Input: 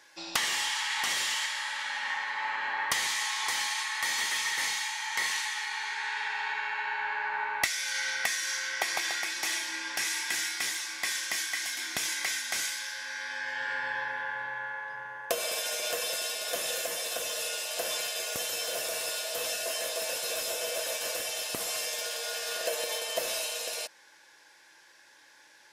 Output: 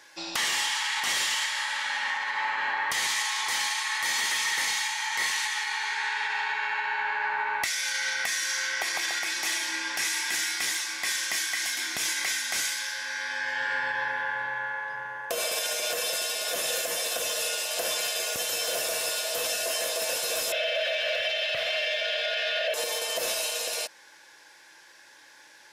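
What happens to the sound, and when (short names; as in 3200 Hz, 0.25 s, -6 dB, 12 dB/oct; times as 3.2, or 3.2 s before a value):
20.52–22.74 EQ curve 120 Hz 0 dB, 170 Hz -5 dB, 250 Hz -19 dB, 360 Hz -21 dB, 610 Hz +13 dB, 900 Hz -10 dB, 1700 Hz +10 dB, 3300 Hz +11 dB, 8200 Hz -22 dB
whole clip: limiter -24 dBFS; gain +4.5 dB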